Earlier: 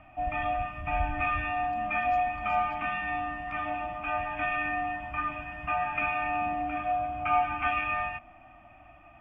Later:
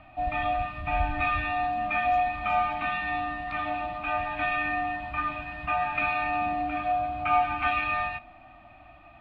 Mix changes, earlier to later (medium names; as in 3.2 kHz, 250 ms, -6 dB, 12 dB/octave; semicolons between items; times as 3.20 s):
background: remove Butterworth band-stop 4.1 kHz, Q 2.1; reverb: on, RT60 0.40 s